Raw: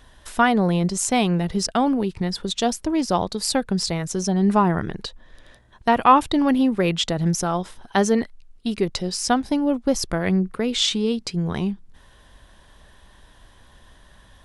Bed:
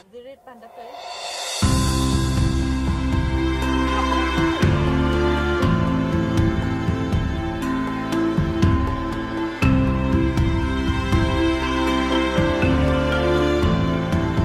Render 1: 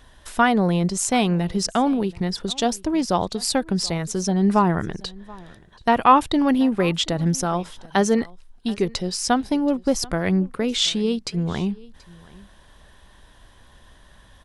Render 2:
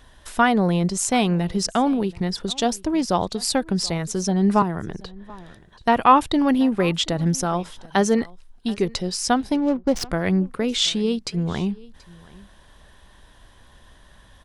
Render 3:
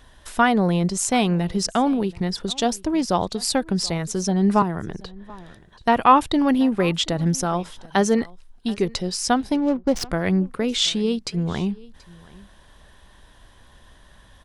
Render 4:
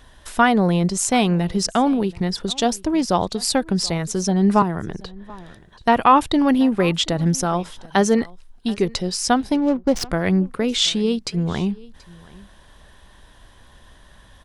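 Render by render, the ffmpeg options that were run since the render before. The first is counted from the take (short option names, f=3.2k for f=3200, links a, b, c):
-af "aecho=1:1:730:0.0708"
-filter_complex "[0:a]asettb=1/sr,asplit=3[a][b][c];[a]atrim=end=4.624[d];[b]atrim=start=4.62:end=5.3,asetpts=PTS-STARTPTS,afade=t=in:d=0.004:c=qsin,afade=t=out:st=0.676:d=0.004:c=qsin,acrossover=split=450|1400|3700[e][f][g][h];[e]acompressor=threshold=-26dB:ratio=3[i];[f]acompressor=threshold=-32dB:ratio=3[j];[g]acompressor=threshold=-45dB:ratio=3[k];[h]acompressor=threshold=-54dB:ratio=3[l];[i][j][k][l]amix=inputs=4:normalize=0[m];[c]atrim=start=5.296[n];[d][m]acrossfade=d=0.004:c1=hsin:c2=qsin[o];[o][n]acrossfade=d=0.004:c1=qsin:c2=hsin,asettb=1/sr,asplit=3[p][q][r];[p]atrim=end=9.554[s];[q]atrim=start=9.55:end=10.09,asetpts=PTS-STARTPTS,afade=t=in:d=0.004:c=qsin,afade=t=out:st=0.536:d=0.004:c=qsin,adynamicsmooth=sensitivity=6:basefreq=510[t];[r]atrim=start=10.086[u];[s][t]acrossfade=d=0.004:c1=hsin:c2=qsin[v];[v][u]acrossfade=d=0.004:c1=qsin:c2=hsin"
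-af anull
-af "volume=2dB,alimiter=limit=-3dB:level=0:latency=1"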